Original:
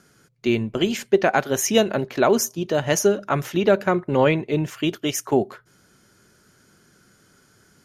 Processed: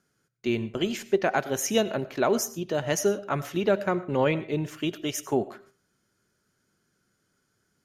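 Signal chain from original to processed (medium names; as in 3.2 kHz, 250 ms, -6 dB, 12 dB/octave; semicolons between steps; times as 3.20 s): gate -51 dBFS, range -10 dB; reverberation RT60 0.35 s, pre-delay 55 ms, DRR 16 dB; trim -6 dB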